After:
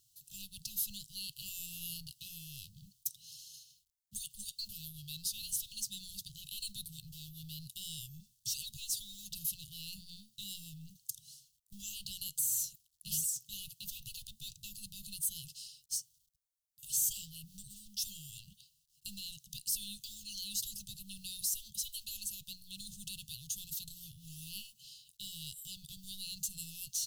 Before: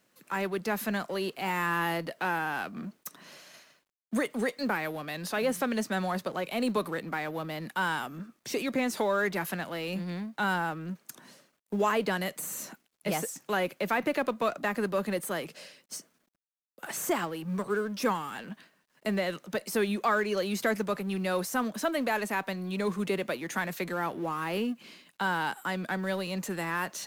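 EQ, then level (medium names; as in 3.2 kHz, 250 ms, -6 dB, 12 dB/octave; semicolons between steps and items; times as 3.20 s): brick-wall FIR band-stop 180–2500 Hz; bass shelf 480 Hz +4 dB; static phaser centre 670 Hz, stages 6; +5.5 dB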